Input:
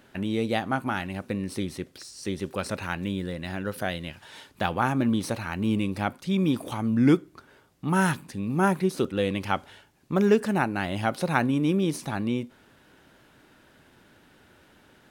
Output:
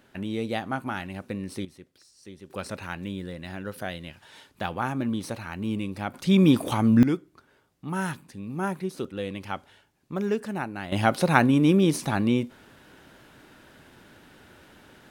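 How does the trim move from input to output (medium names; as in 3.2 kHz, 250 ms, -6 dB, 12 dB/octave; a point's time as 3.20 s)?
-3 dB
from 1.65 s -14 dB
from 2.50 s -4 dB
from 6.14 s +6 dB
from 7.03 s -6.5 dB
from 10.92 s +4.5 dB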